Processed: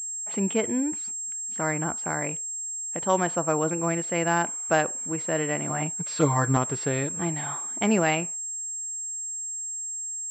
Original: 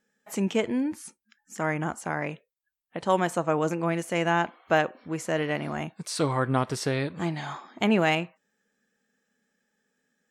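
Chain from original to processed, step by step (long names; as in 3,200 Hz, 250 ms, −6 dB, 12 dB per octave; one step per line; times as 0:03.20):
0:05.69–0:06.57: comb filter 6.6 ms, depth 81%
switching amplifier with a slow clock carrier 7,500 Hz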